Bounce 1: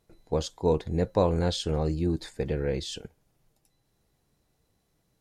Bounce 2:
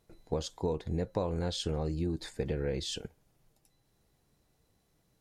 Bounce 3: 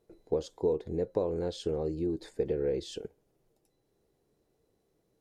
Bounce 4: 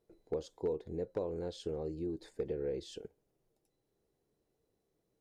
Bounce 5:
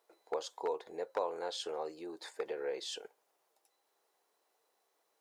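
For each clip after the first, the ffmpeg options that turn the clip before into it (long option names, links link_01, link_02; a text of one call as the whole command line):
ffmpeg -i in.wav -af "acompressor=threshold=-29dB:ratio=5" out.wav
ffmpeg -i in.wav -af "equalizer=frequency=410:width_type=o:width=1.3:gain=14,volume=-7.5dB" out.wav
ffmpeg -i in.wav -af "volume=19.5dB,asoftclip=hard,volume=-19.5dB,volume=-6.5dB" out.wav
ffmpeg -i in.wav -af "highpass=frequency=920:width_type=q:width=1.7,volume=9dB" out.wav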